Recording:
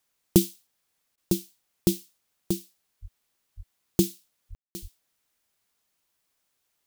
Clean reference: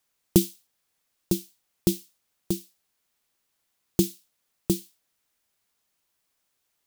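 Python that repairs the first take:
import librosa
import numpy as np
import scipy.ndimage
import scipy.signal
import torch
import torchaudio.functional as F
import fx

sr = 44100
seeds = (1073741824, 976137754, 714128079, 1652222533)

y = fx.fix_deplosive(x, sr, at_s=(3.01, 3.56, 4.49, 4.81))
y = fx.fix_ambience(y, sr, seeds[0], print_start_s=6.35, print_end_s=6.85, start_s=4.55, end_s=4.75)
y = fx.fix_interpolate(y, sr, at_s=(1.16,), length_ms=15.0)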